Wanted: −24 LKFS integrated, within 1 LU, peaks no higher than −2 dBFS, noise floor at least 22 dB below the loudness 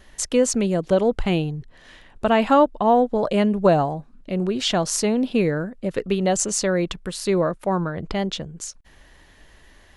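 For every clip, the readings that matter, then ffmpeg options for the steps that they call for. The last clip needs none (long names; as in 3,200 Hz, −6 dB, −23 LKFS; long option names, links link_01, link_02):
integrated loudness −21.5 LKFS; sample peak −4.5 dBFS; target loudness −24.0 LKFS
→ -af "volume=-2.5dB"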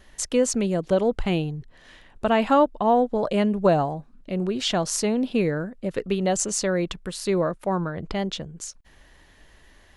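integrated loudness −24.0 LKFS; sample peak −7.0 dBFS; background noise floor −54 dBFS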